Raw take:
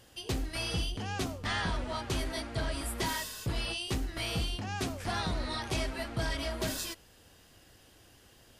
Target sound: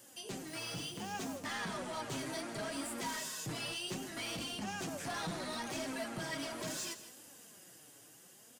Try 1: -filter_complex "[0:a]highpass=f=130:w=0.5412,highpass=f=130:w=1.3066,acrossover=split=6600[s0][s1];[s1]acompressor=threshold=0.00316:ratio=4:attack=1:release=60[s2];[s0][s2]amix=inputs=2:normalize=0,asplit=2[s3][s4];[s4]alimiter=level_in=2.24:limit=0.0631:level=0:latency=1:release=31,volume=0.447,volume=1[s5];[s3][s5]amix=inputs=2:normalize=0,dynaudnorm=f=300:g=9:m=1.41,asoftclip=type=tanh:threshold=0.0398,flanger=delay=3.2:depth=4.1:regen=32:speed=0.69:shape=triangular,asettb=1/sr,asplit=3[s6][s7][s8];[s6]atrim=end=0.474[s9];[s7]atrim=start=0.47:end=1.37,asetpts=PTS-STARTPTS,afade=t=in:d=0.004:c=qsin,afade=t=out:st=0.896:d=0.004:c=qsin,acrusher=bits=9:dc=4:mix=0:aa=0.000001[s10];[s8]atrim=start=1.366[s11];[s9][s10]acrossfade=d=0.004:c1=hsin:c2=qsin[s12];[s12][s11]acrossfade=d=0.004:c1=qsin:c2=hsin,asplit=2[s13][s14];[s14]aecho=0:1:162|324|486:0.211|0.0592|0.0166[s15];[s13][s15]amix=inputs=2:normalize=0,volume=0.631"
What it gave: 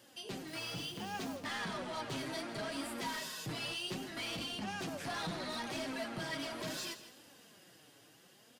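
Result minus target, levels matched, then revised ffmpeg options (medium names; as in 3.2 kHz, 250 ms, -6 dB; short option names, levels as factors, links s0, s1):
8 kHz band -5.0 dB
-filter_complex "[0:a]highpass=f=130:w=0.5412,highpass=f=130:w=1.3066,highshelf=f=5600:t=q:w=1.5:g=8,acrossover=split=6600[s0][s1];[s1]acompressor=threshold=0.00316:ratio=4:attack=1:release=60[s2];[s0][s2]amix=inputs=2:normalize=0,asplit=2[s3][s4];[s4]alimiter=level_in=2.24:limit=0.0631:level=0:latency=1:release=31,volume=0.447,volume=1[s5];[s3][s5]amix=inputs=2:normalize=0,dynaudnorm=f=300:g=9:m=1.41,asoftclip=type=tanh:threshold=0.0398,flanger=delay=3.2:depth=4.1:regen=32:speed=0.69:shape=triangular,asettb=1/sr,asplit=3[s6][s7][s8];[s6]atrim=end=0.474[s9];[s7]atrim=start=0.47:end=1.37,asetpts=PTS-STARTPTS,afade=t=in:d=0.004:c=qsin,afade=t=out:st=0.896:d=0.004:c=qsin,acrusher=bits=9:dc=4:mix=0:aa=0.000001[s10];[s8]atrim=start=1.366[s11];[s9][s10]acrossfade=d=0.004:c1=hsin:c2=qsin[s12];[s12][s11]acrossfade=d=0.004:c1=qsin:c2=hsin,asplit=2[s13][s14];[s14]aecho=0:1:162|324|486:0.211|0.0592|0.0166[s15];[s13][s15]amix=inputs=2:normalize=0,volume=0.631"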